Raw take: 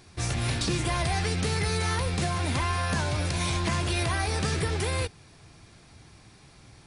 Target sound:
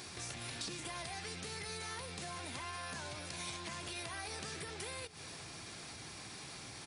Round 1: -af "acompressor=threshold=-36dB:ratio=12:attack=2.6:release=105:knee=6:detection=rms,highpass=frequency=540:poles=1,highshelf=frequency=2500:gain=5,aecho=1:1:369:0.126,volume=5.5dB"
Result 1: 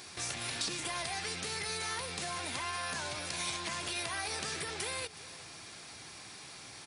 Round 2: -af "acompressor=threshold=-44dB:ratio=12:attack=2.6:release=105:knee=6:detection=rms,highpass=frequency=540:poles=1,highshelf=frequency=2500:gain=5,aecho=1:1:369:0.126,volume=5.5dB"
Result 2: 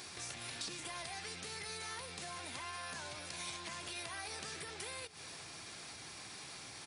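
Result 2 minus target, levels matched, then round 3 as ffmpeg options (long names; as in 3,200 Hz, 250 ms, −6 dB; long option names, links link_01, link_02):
250 Hz band −4.0 dB
-af "acompressor=threshold=-44dB:ratio=12:attack=2.6:release=105:knee=6:detection=rms,highpass=frequency=250:poles=1,highshelf=frequency=2500:gain=5,aecho=1:1:369:0.126,volume=5.5dB"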